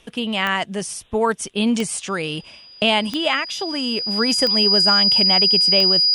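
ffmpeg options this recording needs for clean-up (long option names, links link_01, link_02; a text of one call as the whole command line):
ffmpeg -i in.wav -af "adeclick=threshold=4,bandreject=frequency=4900:width=30" out.wav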